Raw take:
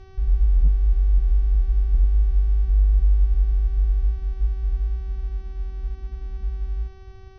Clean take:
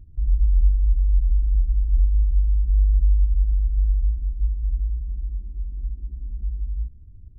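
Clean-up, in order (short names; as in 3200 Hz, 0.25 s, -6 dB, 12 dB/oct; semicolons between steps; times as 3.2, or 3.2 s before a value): clip repair -11 dBFS; de-hum 382.2 Hz, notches 16; inverse comb 0.279 s -21 dB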